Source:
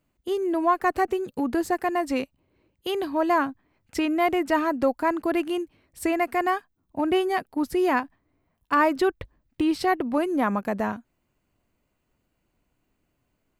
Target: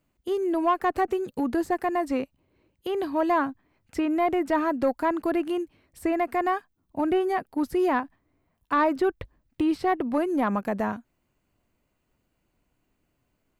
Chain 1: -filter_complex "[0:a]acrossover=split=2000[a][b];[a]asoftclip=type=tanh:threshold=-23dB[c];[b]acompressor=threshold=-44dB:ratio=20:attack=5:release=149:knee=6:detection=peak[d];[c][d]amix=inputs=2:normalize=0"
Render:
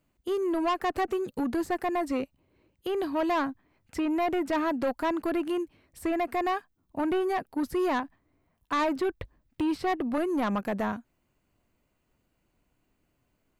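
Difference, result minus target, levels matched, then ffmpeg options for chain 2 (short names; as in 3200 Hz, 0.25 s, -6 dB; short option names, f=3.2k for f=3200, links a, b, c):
soft clip: distortion +12 dB
-filter_complex "[0:a]acrossover=split=2000[a][b];[a]asoftclip=type=tanh:threshold=-13.5dB[c];[b]acompressor=threshold=-44dB:ratio=20:attack=5:release=149:knee=6:detection=peak[d];[c][d]amix=inputs=2:normalize=0"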